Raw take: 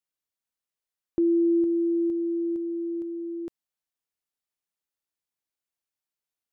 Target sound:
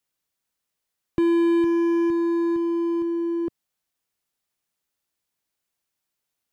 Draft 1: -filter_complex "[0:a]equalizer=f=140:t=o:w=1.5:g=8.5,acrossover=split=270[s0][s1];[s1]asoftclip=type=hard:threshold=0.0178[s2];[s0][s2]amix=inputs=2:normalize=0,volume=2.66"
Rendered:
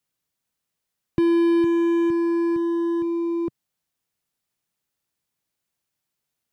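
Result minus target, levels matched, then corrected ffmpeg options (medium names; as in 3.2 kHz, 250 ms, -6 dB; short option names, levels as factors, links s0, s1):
125 Hz band +4.5 dB
-filter_complex "[0:a]equalizer=f=140:t=o:w=1.5:g=2.5,acrossover=split=270[s0][s1];[s1]asoftclip=type=hard:threshold=0.0178[s2];[s0][s2]amix=inputs=2:normalize=0,volume=2.66"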